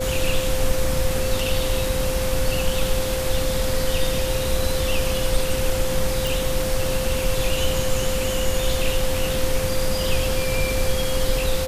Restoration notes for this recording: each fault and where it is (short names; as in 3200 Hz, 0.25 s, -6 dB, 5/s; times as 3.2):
tone 520 Hz -25 dBFS
6.27 pop